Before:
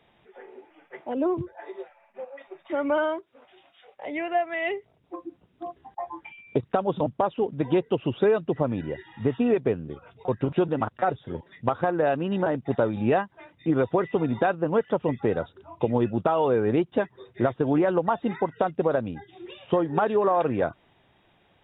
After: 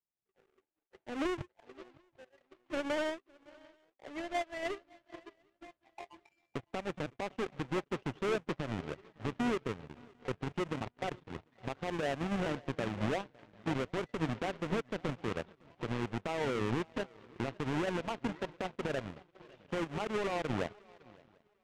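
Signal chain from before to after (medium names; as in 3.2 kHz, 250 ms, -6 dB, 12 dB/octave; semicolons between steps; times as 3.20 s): square wave that keeps the level; low-pass 3.3 kHz 24 dB/octave; peak limiter -17 dBFS, peak gain reduction 10.5 dB; shuffle delay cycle 746 ms, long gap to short 3:1, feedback 41%, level -14 dB; power-law waveshaper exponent 2; trim -6 dB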